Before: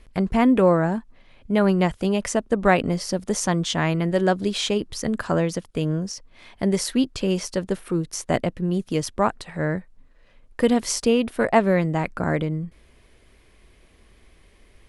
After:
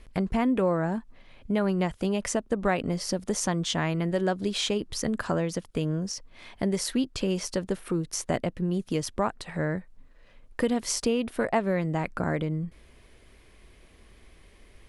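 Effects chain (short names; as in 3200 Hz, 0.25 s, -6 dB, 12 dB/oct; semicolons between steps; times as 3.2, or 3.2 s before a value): compressor 2:1, threshold -27 dBFS, peak gain reduction 9 dB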